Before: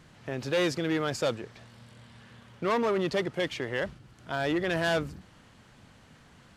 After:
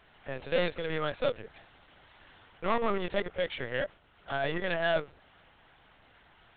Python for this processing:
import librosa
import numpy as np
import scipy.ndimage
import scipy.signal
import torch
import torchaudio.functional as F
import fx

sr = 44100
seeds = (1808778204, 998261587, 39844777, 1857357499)

y = scipy.signal.sosfilt(scipy.signal.butter(4, 390.0, 'highpass', fs=sr, output='sos'), x)
y = fx.lpc_vocoder(y, sr, seeds[0], excitation='pitch_kept', order=10)